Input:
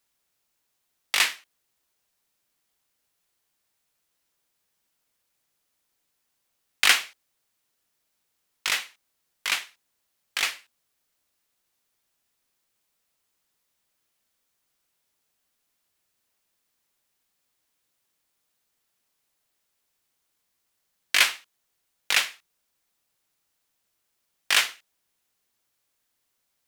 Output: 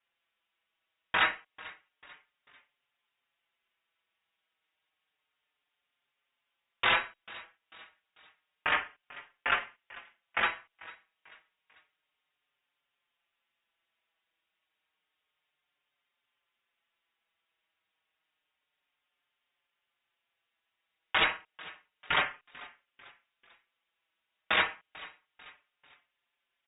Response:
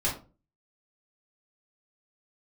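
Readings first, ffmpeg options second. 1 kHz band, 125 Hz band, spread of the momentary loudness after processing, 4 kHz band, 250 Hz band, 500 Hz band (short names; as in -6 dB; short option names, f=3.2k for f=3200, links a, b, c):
+3.0 dB, n/a, 20 LU, -9.0 dB, +5.5 dB, +4.5 dB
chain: -filter_complex "[0:a]aemphasis=mode=reproduction:type=75fm,acrossover=split=550[a][b];[b]acontrast=43[c];[a][c]amix=inputs=2:normalize=0,aeval=exprs='(mod(3.55*val(0)+1,2)-1)/3.55':c=same,asplit=4[d][e][f][g];[e]adelay=443,afreqshift=-92,volume=-20dB[h];[f]adelay=886,afreqshift=-184,volume=-27.5dB[i];[g]adelay=1329,afreqshift=-276,volume=-35.1dB[j];[d][h][i][j]amix=inputs=4:normalize=0,lowpass=f=3.2k:t=q:w=0.5098,lowpass=f=3.2k:t=q:w=0.6013,lowpass=f=3.2k:t=q:w=0.9,lowpass=f=3.2k:t=q:w=2.563,afreqshift=-3800,asplit=2[k][l];[l]adelay=5.4,afreqshift=-0.3[m];[k][m]amix=inputs=2:normalize=1"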